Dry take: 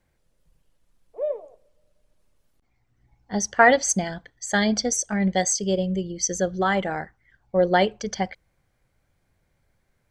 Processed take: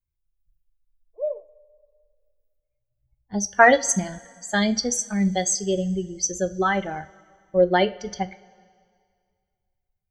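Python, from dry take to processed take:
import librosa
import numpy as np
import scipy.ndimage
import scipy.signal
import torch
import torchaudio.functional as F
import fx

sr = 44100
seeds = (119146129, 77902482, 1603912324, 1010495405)

y = fx.bin_expand(x, sr, power=1.5)
y = fx.rev_double_slope(y, sr, seeds[0], early_s=0.31, late_s=2.1, knee_db=-18, drr_db=10.0)
y = y * 10.0 ** (2.0 / 20.0)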